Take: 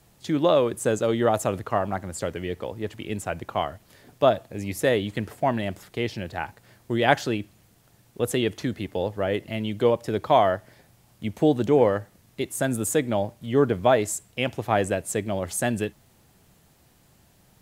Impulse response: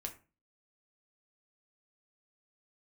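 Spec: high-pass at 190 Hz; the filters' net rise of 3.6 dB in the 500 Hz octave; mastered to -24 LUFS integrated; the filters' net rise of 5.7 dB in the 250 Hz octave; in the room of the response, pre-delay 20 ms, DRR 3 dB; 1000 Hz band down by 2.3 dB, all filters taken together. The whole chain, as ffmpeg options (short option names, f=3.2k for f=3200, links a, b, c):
-filter_complex "[0:a]highpass=190,equalizer=f=250:t=o:g=7.5,equalizer=f=500:t=o:g=4.5,equalizer=f=1k:t=o:g=-7,asplit=2[a][b];[1:a]atrim=start_sample=2205,adelay=20[c];[b][c]afir=irnorm=-1:irlink=0,volume=-1dB[d];[a][d]amix=inputs=2:normalize=0,volume=-4dB"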